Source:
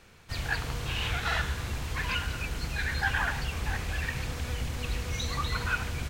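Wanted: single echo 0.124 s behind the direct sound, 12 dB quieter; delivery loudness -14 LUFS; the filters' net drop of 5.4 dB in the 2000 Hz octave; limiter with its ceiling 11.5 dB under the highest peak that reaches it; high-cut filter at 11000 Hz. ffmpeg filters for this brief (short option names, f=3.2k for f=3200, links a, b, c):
-af "lowpass=11k,equalizer=f=2k:t=o:g=-7.5,alimiter=level_in=4.5dB:limit=-24dB:level=0:latency=1,volume=-4.5dB,aecho=1:1:124:0.251,volume=24dB"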